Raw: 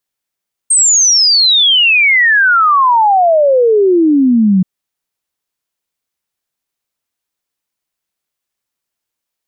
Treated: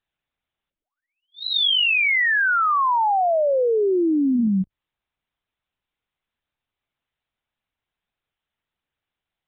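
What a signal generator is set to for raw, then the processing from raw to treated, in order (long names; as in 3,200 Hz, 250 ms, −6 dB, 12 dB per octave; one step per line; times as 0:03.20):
exponential sine sweep 8,600 Hz → 180 Hz 3.93 s −6 dBFS
brickwall limiter −16 dBFS
linear-prediction vocoder at 8 kHz pitch kept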